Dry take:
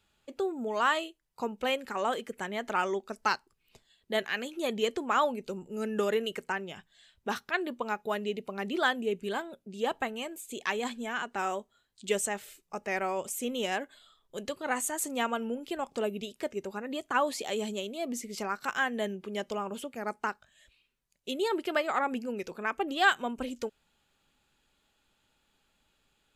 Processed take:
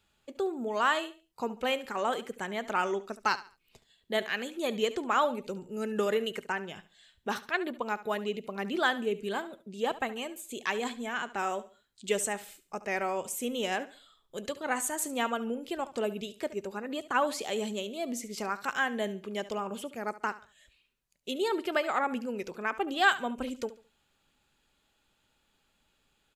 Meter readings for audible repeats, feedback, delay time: 2, 30%, 71 ms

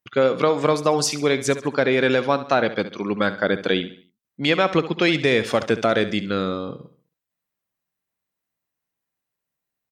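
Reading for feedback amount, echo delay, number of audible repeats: 40%, 68 ms, 3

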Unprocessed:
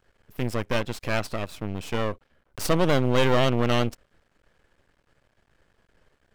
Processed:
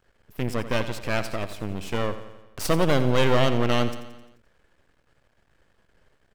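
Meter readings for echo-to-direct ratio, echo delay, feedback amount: −10.5 dB, 87 ms, 58%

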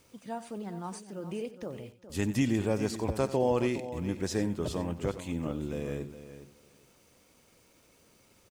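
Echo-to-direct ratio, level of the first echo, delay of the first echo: −10.5 dB, −15.0 dB, 92 ms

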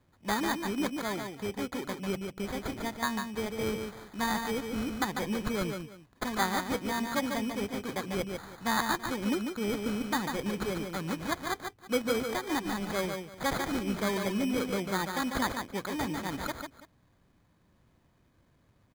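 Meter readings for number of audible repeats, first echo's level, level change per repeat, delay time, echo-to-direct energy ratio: 2, −5.5 dB, repeats not evenly spaced, 146 ms, −5.5 dB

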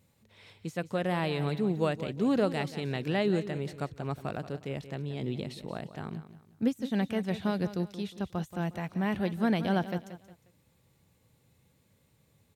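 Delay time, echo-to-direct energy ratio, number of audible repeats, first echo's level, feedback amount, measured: 179 ms, −12.5 dB, 3, −13.0 dB, 34%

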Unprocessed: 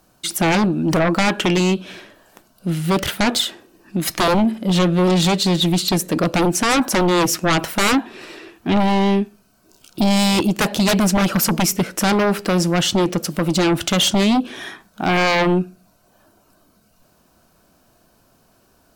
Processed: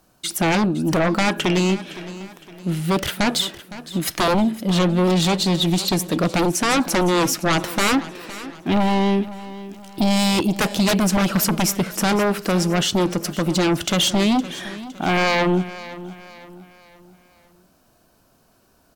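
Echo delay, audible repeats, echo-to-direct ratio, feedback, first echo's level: 512 ms, 3, −15.0 dB, 42%, −16.0 dB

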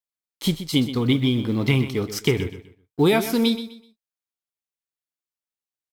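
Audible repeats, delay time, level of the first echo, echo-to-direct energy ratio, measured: 3, 126 ms, −12.0 dB, −11.5 dB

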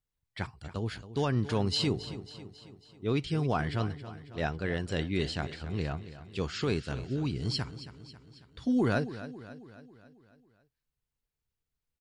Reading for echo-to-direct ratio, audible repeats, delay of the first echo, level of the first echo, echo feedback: −12.5 dB, 5, 273 ms, −14.0 dB, 55%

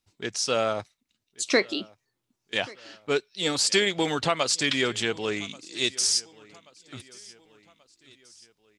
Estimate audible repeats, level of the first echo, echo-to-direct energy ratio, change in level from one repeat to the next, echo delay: 2, −23.0 dB, −22.0 dB, −6.0 dB, 1,133 ms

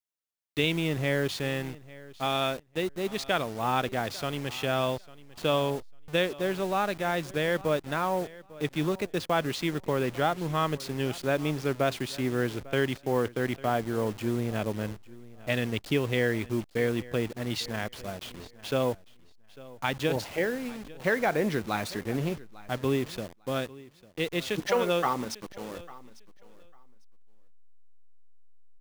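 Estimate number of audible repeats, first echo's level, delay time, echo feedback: 2, −20.0 dB, 849 ms, 18%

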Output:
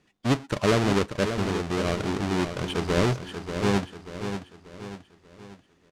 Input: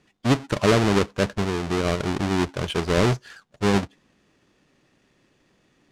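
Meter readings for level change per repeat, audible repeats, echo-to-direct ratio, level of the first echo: −7.0 dB, 4, −7.5 dB, −8.5 dB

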